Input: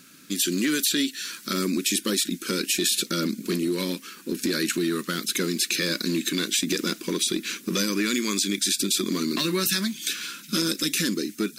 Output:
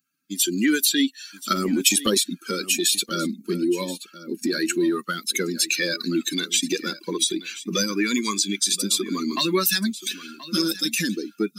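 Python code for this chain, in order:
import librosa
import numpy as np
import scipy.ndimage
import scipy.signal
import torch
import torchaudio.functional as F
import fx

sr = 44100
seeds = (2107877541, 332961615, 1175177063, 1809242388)

y = fx.bin_expand(x, sr, power=2.0)
y = scipy.signal.sosfilt(scipy.signal.butter(2, 190.0, 'highpass', fs=sr, output='sos'), y)
y = fx.peak_eq(y, sr, hz=1100.0, db=4.0, octaves=0.28)
y = fx.transient(y, sr, attack_db=7, sustain_db=11, at=(1.31, 2.19))
y = y + 10.0 ** (-16.0 / 20.0) * np.pad(y, (int(1028 * sr / 1000.0), 0))[:len(y)]
y = F.gain(torch.from_numpy(y), 7.5).numpy()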